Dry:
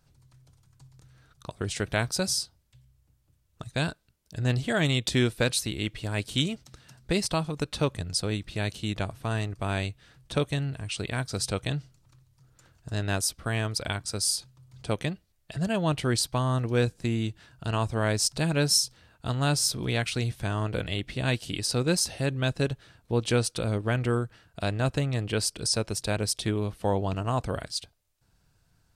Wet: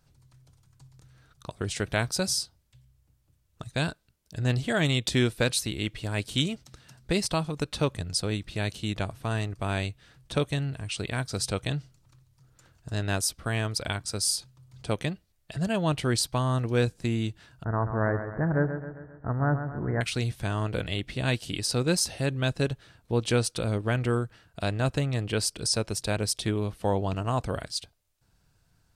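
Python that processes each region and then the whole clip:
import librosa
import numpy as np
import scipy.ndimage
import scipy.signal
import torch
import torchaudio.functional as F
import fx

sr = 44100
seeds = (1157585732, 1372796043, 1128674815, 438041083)

y = fx.chain(x, sr, fx.steep_lowpass(hz=1900.0, slope=96),
    fx.echo_feedback(ms=133, feedback_pct=53, wet_db=-9), at=(17.64, 20.01))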